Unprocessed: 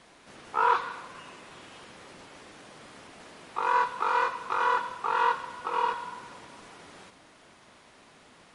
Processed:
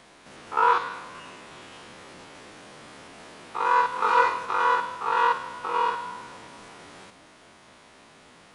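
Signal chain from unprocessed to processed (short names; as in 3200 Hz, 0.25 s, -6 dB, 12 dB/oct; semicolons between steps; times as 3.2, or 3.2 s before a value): stepped spectrum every 50 ms; 3.9–4.46 flutter echo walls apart 4 m, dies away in 0.33 s; gain +4.5 dB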